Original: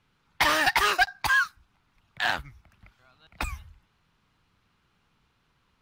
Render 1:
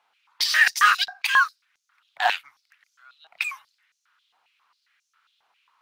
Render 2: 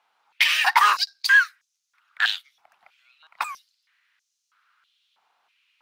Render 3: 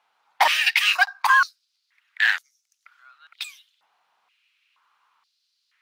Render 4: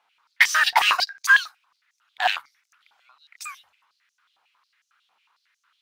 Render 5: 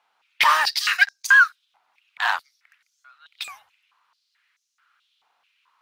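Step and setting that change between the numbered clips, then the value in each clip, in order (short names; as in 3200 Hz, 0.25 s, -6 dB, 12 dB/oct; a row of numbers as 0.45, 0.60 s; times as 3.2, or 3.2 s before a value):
stepped high-pass, rate: 7.4, 3.1, 2.1, 11, 4.6 Hz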